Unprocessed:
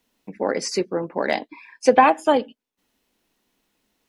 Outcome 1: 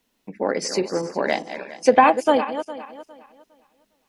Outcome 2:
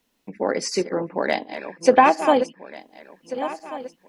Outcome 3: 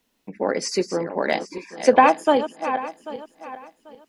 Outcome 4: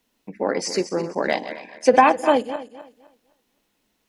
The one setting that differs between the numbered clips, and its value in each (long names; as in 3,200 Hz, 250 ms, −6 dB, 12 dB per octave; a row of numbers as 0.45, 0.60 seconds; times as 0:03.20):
feedback delay that plays each chunk backwards, delay time: 204, 719, 395, 128 milliseconds